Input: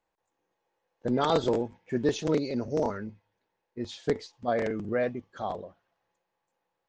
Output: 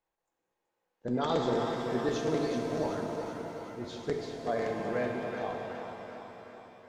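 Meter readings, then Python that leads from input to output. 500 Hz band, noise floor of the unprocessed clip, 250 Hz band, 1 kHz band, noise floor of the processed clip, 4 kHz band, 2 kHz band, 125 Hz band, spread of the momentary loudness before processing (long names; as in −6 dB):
−2.5 dB, −82 dBFS, −3.0 dB, −1.5 dB, −85 dBFS, −3.0 dB, −1.0 dB, −2.5 dB, 14 LU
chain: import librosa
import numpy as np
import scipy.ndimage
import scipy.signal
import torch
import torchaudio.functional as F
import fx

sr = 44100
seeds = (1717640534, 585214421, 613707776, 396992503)

y = fx.echo_feedback(x, sr, ms=377, feedback_pct=56, wet_db=-8)
y = fx.rev_shimmer(y, sr, seeds[0], rt60_s=2.9, semitones=7, shimmer_db=-8, drr_db=2.0)
y = F.gain(torch.from_numpy(y), -6.0).numpy()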